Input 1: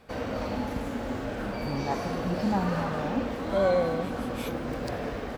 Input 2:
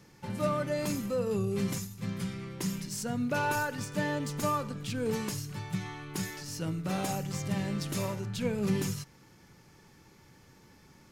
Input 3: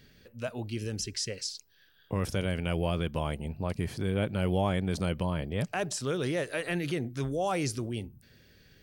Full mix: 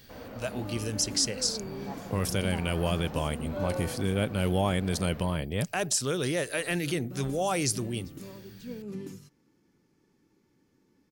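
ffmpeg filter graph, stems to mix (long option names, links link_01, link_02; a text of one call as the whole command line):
ffmpeg -i stem1.wav -i stem2.wav -i stem3.wav -filter_complex "[0:a]volume=-11.5dB[link_01];[1:a]firequalizer=gain_entry='entry(120,0);entry(270,13);entry(640,0)':delay=0.05:min_phase=1,adelay=250,volume=-16dB,asplit=3[link_02][link_03][link_04];[link_02]atrim=end=4.21,asetpts=PTS-STARTPTS,afade=type=out:start_time=4.206:duration=0.004:curve=hsin[link_05];[link_03]atrim=start=4.21:end=6.57,asetpts=PTS-STARTPTS,volume=0[link_06];[link_04]atrim=start=6.57,asetpts=PTS-STARTPTS,afade=type=in:duration=0.004:curve=hsin[link_07];[link_05][link_06][link_07]concat=n=3:v=0:a=1[link_08];[2:a]highshelf=frequency=5100:gain=11.5,volume=1dB[link_09];[link_01][link_08][link_09]amix=inputs=3:normalize=0" out.wav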